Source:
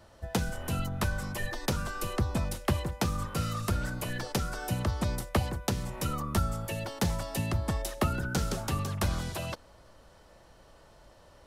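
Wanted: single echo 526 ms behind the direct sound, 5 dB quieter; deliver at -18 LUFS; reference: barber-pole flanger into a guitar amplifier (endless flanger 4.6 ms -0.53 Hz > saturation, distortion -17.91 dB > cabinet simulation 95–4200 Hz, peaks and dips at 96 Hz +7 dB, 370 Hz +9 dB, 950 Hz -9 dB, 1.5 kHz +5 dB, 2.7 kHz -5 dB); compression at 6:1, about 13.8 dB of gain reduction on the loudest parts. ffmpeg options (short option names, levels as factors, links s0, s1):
-filter_complex "[0:a]acompressor=threshold=0.0126:ratio=6,aecho=1:1:526:0.562,asplit=2[s0][s1];[s1]adelay=4.6,afreqshift=-0.53[s2];[s0][s2]amix=inputs=2:normalize=1,asoftclip=threshold=0.0168,highpass=95,equalizer=f=96:t=q:w=4:g=7,equalizer=f=370:t=q:w=4:g=9,equalizer=f=950:t=q:w=4:g=-9,equalizer=f=1500:t=q:w=4:g=5,equalizer=f=2700:t=q:w=4:g=-5,lowpass=f=4200:w=0.5412,lowpass=f=4200:w=1.3066,volume=23.7"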